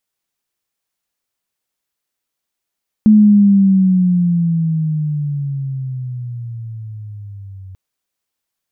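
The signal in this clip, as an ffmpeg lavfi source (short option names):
-f lavfi -i "aevalsrc='pow(10,(-4-27*t/4.69)/20)*sin(2*PI*216*4.69/(-14.5*log(2)/12)*(exp(-14.5*log(2)/12*t/4.69)-1))':d=4.69:s=44100"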